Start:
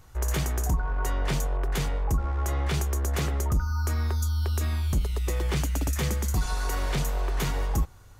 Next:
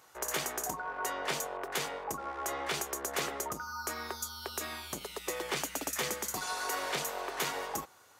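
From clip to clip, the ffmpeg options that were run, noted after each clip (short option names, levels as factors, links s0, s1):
-af "highpass=440"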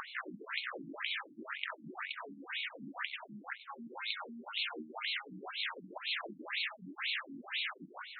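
-af "afftfilt=real='re*lt(hypot(re,im),0.0141)':imag='im*lt(hypot(re,im),0.0141)':win_size=1024:overlap=0.75,acompressor=mode=upward:threshold=0.00398:ratio=2.5,afftfilt=real='re*between(b*sr/1024,220*pow(3100/220,0.5+0.5*sin(2*PI*2*pts/sr))/1.41,220*pow(3100/220,0.5+0.5*sin(2*PI*2*pts/sr))*1.41)':imag='im*between(b*sr/1024,220*pow(3100/220,0.5+0.5*sin(2*PI*2*pts/sr))/1.41,220*pow(3100/220,0.5+0.5*sin(2*PI*2*pts/sr))*1.41)':win_size=1024:overlap=0.75,volume=6.68"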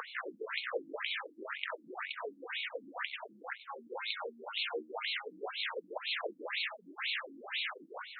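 -af "highpass=f=470:t=q:w=4.9"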